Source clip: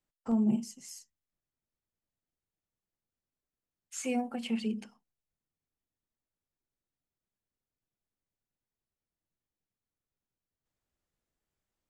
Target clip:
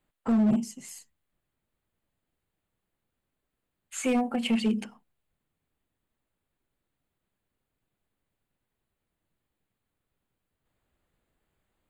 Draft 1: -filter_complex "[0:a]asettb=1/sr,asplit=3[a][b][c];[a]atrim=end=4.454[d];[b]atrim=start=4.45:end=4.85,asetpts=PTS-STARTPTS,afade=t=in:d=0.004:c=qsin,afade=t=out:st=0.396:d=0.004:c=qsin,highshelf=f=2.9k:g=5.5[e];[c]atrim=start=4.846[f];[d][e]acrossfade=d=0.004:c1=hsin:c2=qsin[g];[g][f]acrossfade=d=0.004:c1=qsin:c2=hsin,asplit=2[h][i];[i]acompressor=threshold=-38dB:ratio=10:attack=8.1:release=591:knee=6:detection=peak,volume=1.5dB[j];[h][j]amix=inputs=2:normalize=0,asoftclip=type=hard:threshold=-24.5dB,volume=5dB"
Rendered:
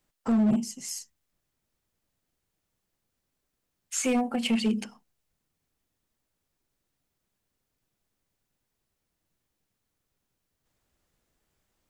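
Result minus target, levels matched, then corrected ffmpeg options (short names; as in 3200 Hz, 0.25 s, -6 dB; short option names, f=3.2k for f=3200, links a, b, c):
8000 Hz band +7.0 dB
-filter_complex "[0:a]asettb=1/sr,asplit=3[a][b][c];[a]atrim=end=4.454[d];[b]atrim=start=4.45:end=4.85,asetpts=PTS-STARTPTS,afade=t=in:d=0.004:c=qsin,afade=t=out:st=0.396:d=0.004:c=qsin,highshelf=f=2.9k:g=5.5[e];[c]atrim=start=4.846[f];[d][e]acrossfade=d=0.004:c1=hsin:c2=qsin[g];[g][f]acrossfade=d=0.004:c1=qsin:c2=hsin,asplit=2[h][i];[i]acompressor=threshold=-38dB:ratio=10:attack=8.1:release=591:knee=6:detection=peak,lowpass=f=5.7k:w=0.5412,lowpass=f=5.7k:w=1.3066,volume=1.5dB[j];[h][j]amix=inputs=2:normalize=0,asoftclip=type=hard:threshold=-24.5dB,volume=5dB"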